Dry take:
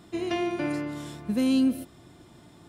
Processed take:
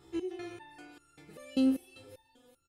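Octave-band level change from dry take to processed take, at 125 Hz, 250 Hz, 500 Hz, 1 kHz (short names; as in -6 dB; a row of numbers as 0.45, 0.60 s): under -15 dB, -7.0 dB, -8.5 dB, -14.5 dB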